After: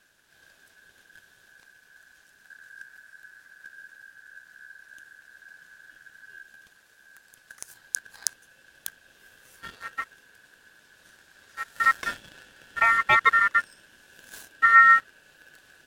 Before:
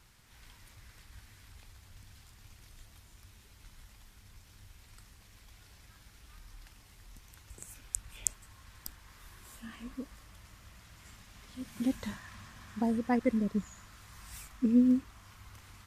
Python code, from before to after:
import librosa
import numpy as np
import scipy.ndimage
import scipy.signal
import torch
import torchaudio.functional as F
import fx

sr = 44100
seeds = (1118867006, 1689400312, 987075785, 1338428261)

y = fx.leveller(x, sr, passes=2)
y = fx.low_shelf(y, sr, hz=260.0, db=9.5, at=(2.5, 6.43))
y = y * np.sin(2.0 * np.pi * 1600.0 * np.arange(len(y)) / sr)
y = y * 10.0 ** (4.5 / 20.0)